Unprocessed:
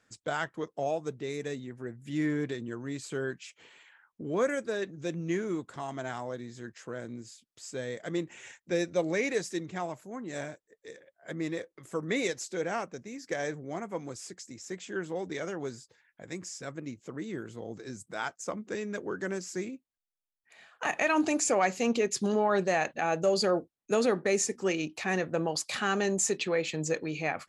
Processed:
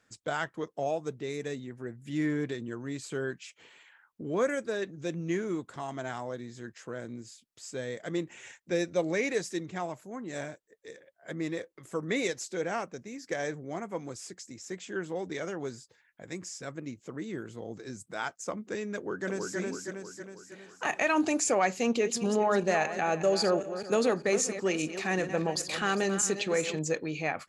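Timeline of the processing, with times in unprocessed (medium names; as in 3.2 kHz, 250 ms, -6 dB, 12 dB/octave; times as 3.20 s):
18.95–19.58 s: echo throw 320 ms, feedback 55%, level -2 dB
21.84–26.79 s: backward echo that repeats 199 ms, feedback 49%, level -10.5 dB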